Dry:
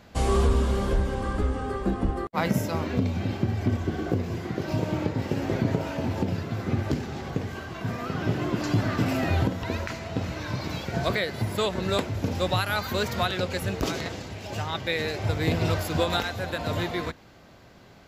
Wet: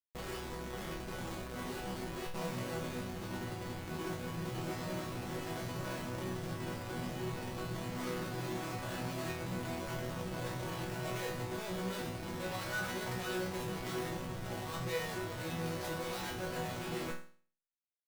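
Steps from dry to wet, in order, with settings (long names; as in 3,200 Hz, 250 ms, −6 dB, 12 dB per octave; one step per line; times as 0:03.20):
comparator with hysteresis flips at −34.5 dBFS
resonators tuned to a chord B2 sus4, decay 0.44 s
level +4.5 dB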